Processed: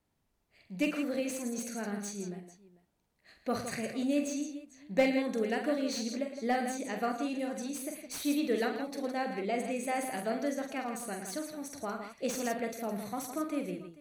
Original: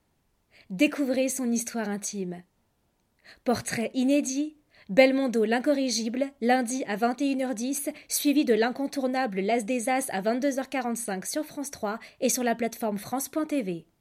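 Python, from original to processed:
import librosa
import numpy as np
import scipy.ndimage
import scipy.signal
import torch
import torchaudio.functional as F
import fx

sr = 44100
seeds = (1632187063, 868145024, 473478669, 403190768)

y = fx.dynamic_eq(x, sr, hz=1200.0, q=6.5, threshold_db=-52.0, ratio=4.0, max_db=7)
y = fx.echo_multitap(y, sr, ms=(45, 109, 163, 445), db=(-6.5, -12.0, -9.0, -19.0))
y = fx.slew_limit(y, sr, full_power_hz=230.0)
y = y * librosa.db_to_amplitude(-8.5)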